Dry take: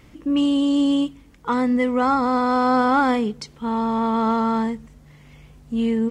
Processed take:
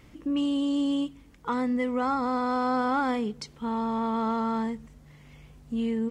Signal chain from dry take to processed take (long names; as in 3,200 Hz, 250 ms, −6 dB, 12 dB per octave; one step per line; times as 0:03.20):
downward compressor 1.5 to 1, threshold −26 dBFS, peak gain reduction 4.5 dB
level −4 dB